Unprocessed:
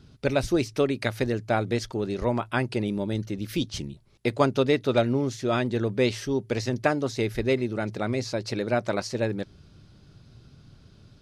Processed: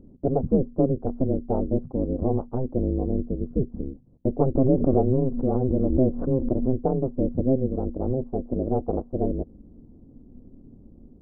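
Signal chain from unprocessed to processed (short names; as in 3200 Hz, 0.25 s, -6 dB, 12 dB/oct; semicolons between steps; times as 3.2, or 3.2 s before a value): ring modulator 130 Hz; Gaussian blur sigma 14 samples; 4.55–6.8 backwards sustainer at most 59 dB/s; gain +8 dB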